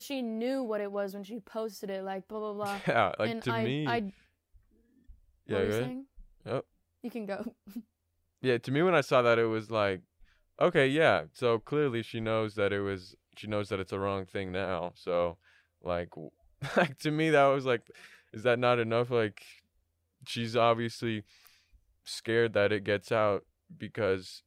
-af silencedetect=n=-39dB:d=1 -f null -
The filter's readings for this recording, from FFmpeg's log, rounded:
silence_start: 4.10
silence_end: 5.49 | silence_duration: 1.39